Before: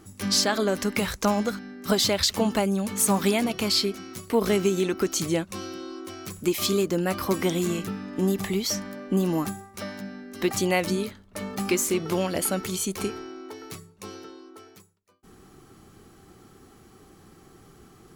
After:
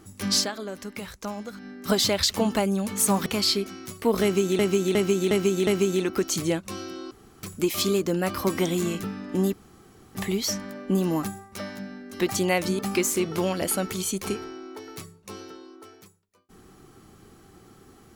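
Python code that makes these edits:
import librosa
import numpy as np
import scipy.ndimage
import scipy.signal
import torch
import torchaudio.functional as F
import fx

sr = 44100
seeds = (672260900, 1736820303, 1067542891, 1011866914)

y = fx.edit(x, sr, fx.fade_down_up(start_s=0.37, length_s=1.3, db=-10.5, fade_s=0.15),
    fx.cut(start_s=3.26, length_s=0.28),
    fx.repeat(start_s=4.51, length_s=0.36, count=5),
    fx.room_tone_fill(start_s=5.95, length_s=0.32),
    fx.insert_room_tone(at_s=8.37, length_s=0.62),
    fx.cut(start_s=11.01, length_s=0.52), tone=tone)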